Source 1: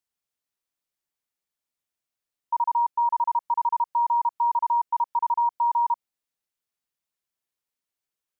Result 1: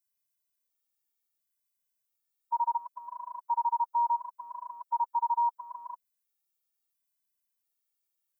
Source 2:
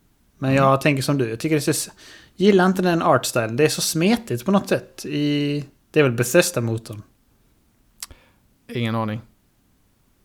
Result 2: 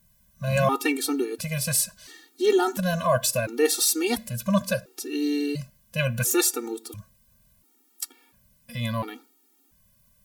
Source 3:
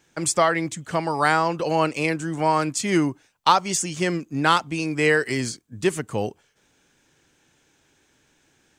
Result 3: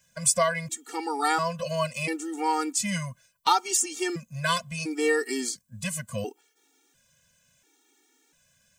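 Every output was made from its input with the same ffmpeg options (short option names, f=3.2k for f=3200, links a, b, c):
-af "aemphasis=mode=production:type=50kf,afftfilt=real='re*gt(sin(2*PI*0.72*pts/sr)*(1-2*mod(floor(b*sr/1024/240),2)),0)':imag='im*gt(sin(2*PI*0.72*pts/sr)*(1-2*mod(floor(b*sr/1024/240),2)),0)':win_size=1024:overlap=0.75,volume=-3.5dB"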